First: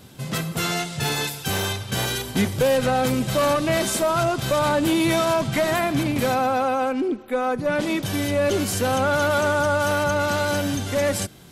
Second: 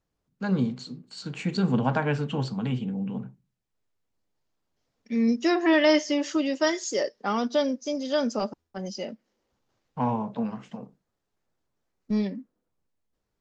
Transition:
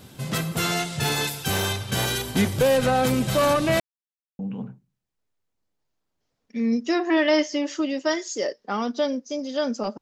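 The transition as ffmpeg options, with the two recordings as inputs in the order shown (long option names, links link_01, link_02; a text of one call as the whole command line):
ffmpeg -i cue0.wav -i cue1.wav -filter_complex "[0:a]apad=whole_dur=10.01,atrim=end=10.01,asplit=2[link_01][link_02];[link_01]atrim=end=3.8,asetpts=PTS-STARTPTS,afade=type=out:start_time=3.796:duration=0.004:curve=hsin[link_03];[link_02]atrim=start=3.8:end=4.39,asetpts=PTS-STARTPTS,volume=0[link_04];[1:a]atrim=start=2.95:end=8.57,asetpts=PTS-STARTPTS,afade=type=in:duration=0.004:curve=hsin[link_05];[link_03][link_04][link_05]concat=n=3:v=0:a=1" out.wav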